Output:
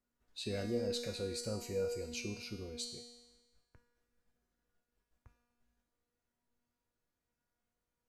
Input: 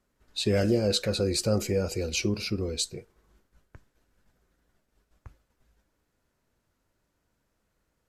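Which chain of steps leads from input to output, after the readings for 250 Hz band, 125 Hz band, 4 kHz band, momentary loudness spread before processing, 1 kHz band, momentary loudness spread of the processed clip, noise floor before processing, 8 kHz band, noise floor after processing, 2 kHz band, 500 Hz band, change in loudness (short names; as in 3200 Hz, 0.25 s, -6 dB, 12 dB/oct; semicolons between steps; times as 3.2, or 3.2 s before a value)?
-13.5 dB, -15.0 dB, -12.5 dB, 7 LU, -11.5 dB, 8 LU, -77 dBFS, -12.5 dB, under -85 dBFS, -12.0 dB, -10.5 dB, -12.0 dB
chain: resonator 240 Hz, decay 1.2 s, mix 90%; gain +4 dB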